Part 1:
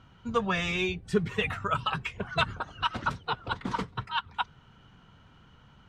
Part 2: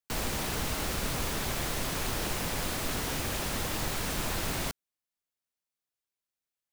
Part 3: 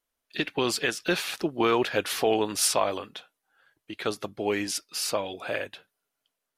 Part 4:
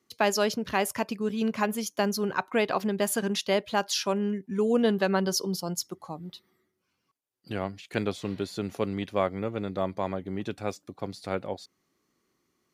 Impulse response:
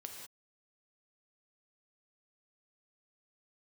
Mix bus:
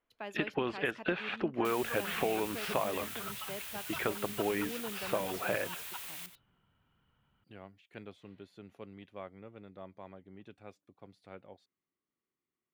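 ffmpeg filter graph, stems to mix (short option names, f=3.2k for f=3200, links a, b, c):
-filter_complex "[0:a]adelay=1550,volume=-17.5dB[a];[1:a]aderivative,adelay=1550,volume=-2dB,asplit=2[b][c];[c]volume=-12.5dB[d];[2:a]lowpass=2.2k,acompressor=threshold=-31dB:ratio=5,volume=1.5dB[e];[3:a]volume=-19dB[f];[d]aecho=0:1:92:1[g];[a][b][e][f][g]amix=inputs=5:normalize=0,highshelf=f=3.9k:t=q:w=1.5:g=-7.5"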